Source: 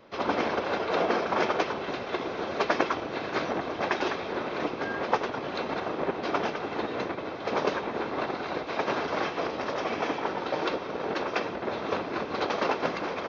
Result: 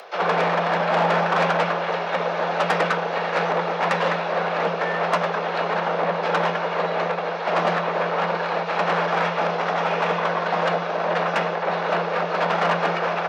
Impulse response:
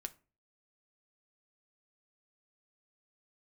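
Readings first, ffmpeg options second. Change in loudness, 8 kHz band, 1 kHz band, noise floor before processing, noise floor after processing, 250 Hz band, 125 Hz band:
+7.5 dB, no reading, +9.0 dB, -37 dBFS, -27 dBFS, +1.5 dB, +11.5 dB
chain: -filter_complex "[0:a]acrossover=split=2800[s0][s1];[s1]acompressor=threshold=0.002:ratio=4:attack=1:release=60[s2];[s0][s2]amix=inputs=2:normalize=0,highpass=f=210:w=0.5412,highpass=f=210:w=1.3066,acompressor=mode=upward:threshold=0.00447:ratio=2.5,aeval=exprs='0.473*(cos(1*acos(clip(val(0)/0.473,-1,1)))-cos(1*PI/2))+0.0531*(cos(8*acos(clip(val(0)/0.473,-1,1)))-cos(8*PI/2))':c=same,asoftclip=type=tanh:threshold=0.075,afreqshift=170,asplit=2[s3][s4];[1:a]atrim=start_sample=2205[s5];[s4][s5]afir=irnorm=-1:irlink=0,volume=2.99[s6];[s3][s6]amix=inputs=2:normalize=0"

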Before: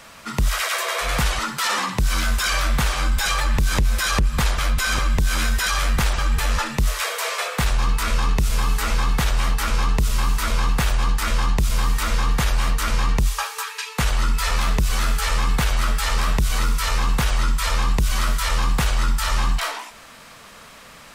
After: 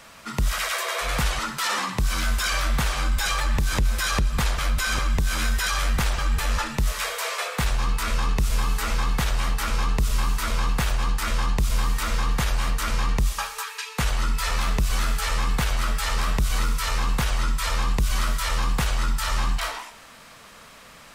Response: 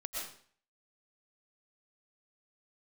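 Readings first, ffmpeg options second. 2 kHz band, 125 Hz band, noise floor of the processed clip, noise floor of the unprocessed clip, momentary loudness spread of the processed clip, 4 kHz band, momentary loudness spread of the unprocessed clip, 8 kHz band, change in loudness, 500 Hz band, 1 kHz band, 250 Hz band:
-3.0 dB, -3.5 dB, -47 dBFS, -44 dBFS, 3 LU, -3.0 dB, 2 LU, -3.0 dB, -3.0 dB, -3.0 dB, -3.0 dB, -3.0 dB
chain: -filter_complex "[0:a]asplit=2[s0][s1];[1:a]atrim=start_sample=2205[s2];[s1][s2]afir=irnorm=-1:irlink=0,volume=0.158[s3];[s0][s3]amix=inputs=2:normalize=0,volume=0.631"

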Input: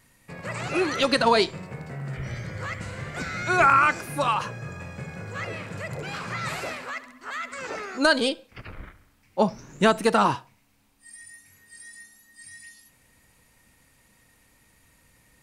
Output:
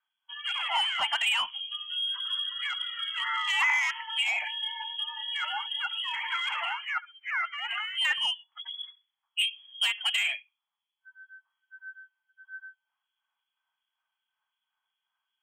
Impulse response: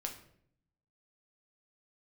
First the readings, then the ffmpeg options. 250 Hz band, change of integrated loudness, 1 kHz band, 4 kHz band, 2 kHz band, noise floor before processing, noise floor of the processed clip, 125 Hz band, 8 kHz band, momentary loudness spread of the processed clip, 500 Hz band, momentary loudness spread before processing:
under -40 dB, -3.5 dB, -9.5 dB, +6.0 dB, -1.0 dB, -62 dBFS, under -85 dBFS, under -40 dB, -5.0 dB, 14 LU, -28.5 dB, 24 LU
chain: -filter_complex "[0:a]afftdn=nr=27:nf=-34,lowpass=f=2900:t=q:w=0.5098,lowpass=f=2900:t=q:w=0.6013,lowpass=f=2900:t=q:w=0.9,lowpass=f=2900:t=q:w=2.563,afreqshift=-3400,acompressor=threshold=0.0316:ratio=2,asoftclip=type=tanh:threshold=0.0668,acrossover=split=2400[s0][s1];[s0]aeval=exprs='val(0)*(1-0.7/2+0.7/2*cos(2*PI*2.7*n/s))':c=same[s2];[s1]aeval=exprs='val(0)*(1-0.7/2-0.7/2*cos(2*PI*2.7*n/s))':c=same[s3];[s2][s3]amix=inputs=2:normalize=0,lowshelf=f=620:t=q:w=3:g=-12,volume=1.88"

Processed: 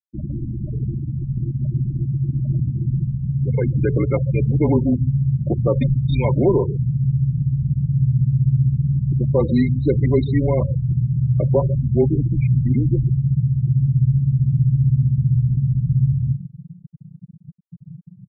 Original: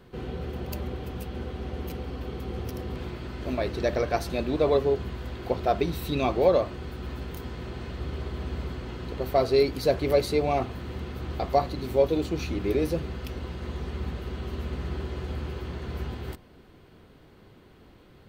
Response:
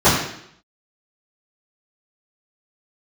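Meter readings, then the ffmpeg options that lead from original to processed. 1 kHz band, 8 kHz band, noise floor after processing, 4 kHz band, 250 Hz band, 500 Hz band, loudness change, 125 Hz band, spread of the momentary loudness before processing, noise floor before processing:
-5.5 dB, under -30 dB, -46 dBFS, no reading, +10.5 dB, +1.5 dB, +10.0 dB, +19.0 dB, 13 LU, -54 dBFS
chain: -filter_complex "[0:a]asubboost=boost=8.5:cutoff=65,aecho=1:1:141:0.133,asplit=2[s0][s1];[s1]alimiter=limit=0.0944:level=0:latency=1:release=74,volume=1[s2];[s0][s2]amix=inputs=2:normalize=0,aeval=exprs='val(0)+0.00794*sin(2*PI*2300*n/s)':c=same,afreqshift=-180,acrusher=bits=5:mix=0:aa=0.000001,afreqshift=16,afftfilt=real='re*gte(hypot(re,im),0.112)':imag='im*gte(hypot(re,im),0.112)':win_size=1024:overlap=0.75,aresample=8000,aresample=44100,volume=1.26"

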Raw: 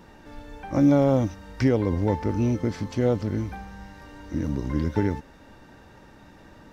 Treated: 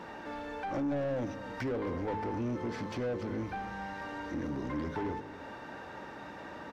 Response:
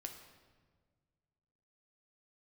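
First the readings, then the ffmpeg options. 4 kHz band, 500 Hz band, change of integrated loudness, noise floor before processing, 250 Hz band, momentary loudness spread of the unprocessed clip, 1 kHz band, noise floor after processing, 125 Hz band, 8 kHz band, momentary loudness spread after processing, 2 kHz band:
-5.5 dB, -9.5 dB, -12.5 dB, -51 dBFS, -11.5 dB, 20 LU, -3.0 dB, -46 dBFS, -15.0 dB, no reading, 11 LU, -1.5 dB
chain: -filter_complex "[0:a]highpass=40,bandreject=f=52.47:t=h:w=4,bandreject=f=104.94:t=h:w=4,bandreject=f=157.41:t=h:w=4,bandreject=f=209.88:t=h:w=4,bandreject=f=262.35:t=h:w=4,bandreject=f=314.82:t=h:w=4,bandreject=f=367.29:t=h:w=4,bandreject=f=419.76:t=h:w=4,bandreject=f=472.23:t=h:w=4,acompressor=threshold=0.00891:ratio=1.5,asoftclip=type=tanh:threshold=0.0841,asplit=2[s0][s1];[s1]highpass=f=720:p=1,volume=12.6,asoftclip=type=tanh:threshold=0.075[s2];[s0][s2]amix=inputs=2:normalize=0,lowpass=f=1400:p=1,volume=0.501,asplit=2[s3][s4];[s4]aecho=0:1:271:0.178[s5];[s3][s5]amix=inputs=2:normalize=0,volume=0.631"

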